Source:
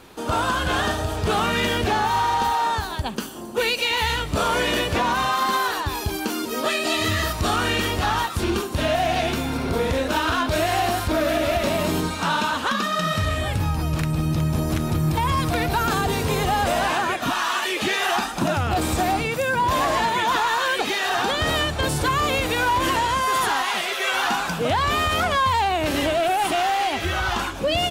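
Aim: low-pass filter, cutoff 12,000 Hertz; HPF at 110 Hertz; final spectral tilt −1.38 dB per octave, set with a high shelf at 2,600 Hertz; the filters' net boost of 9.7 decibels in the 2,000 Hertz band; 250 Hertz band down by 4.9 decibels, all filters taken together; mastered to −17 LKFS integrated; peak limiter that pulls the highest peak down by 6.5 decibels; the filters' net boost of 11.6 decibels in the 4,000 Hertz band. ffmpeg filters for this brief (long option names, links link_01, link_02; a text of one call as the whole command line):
ffmpeg -i in.wav -af "highpass=110,lowpass=12000,equalizer=frequency=250:width_type=o:gain=-7,equalizer=frequency=2000:width_type=o:gain=8,highshelf=frequency=2600:gain=6.5,equalizer=frequency=4000:width_type=o:gain=6.5,volume=-0.5dB,alimiter=limit=-7.5dB:level=0:latency=1" out.wav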